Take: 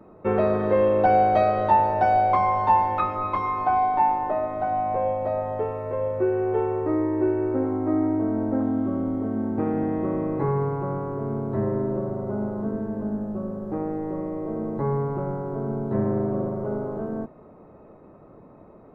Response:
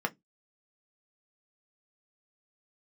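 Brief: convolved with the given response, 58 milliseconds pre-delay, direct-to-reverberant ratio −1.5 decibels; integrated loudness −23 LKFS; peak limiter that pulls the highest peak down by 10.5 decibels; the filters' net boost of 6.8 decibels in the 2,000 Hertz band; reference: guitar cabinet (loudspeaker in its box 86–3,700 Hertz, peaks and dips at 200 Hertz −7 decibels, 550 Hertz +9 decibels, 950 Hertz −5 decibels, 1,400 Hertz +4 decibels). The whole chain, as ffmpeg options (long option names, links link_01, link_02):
-filter_complex "[0:a]equalizer=frequency=2000:width_type=o:gain=7,alimiter=limit=-17dB:level=0:latency=1,asplit=2[link_01][link_02];[1:a]atrim=start_sample=2205,adelay=58[link_03];[link_02][link_03]afir=irnorm=-1:irlink=0,volume=-5.5dB[link_04];[link_01][link_04]amix=inputs=2:normalize=0,highpass=86,equalizer=frequency=200:width_type=q:width=4:gain=-7,equalizer=frequency=550:width_type=q:width=4:gain=9,equalizer=frequency=950:width_type=q:width=4:gain=-5,equalizer=frequency=1400:width_type=q:width=4:gain=4,lowpass=frequency=3700:width=0.5412,lowpass=frequency=3700:width=1.3066,volume=-1.5dB"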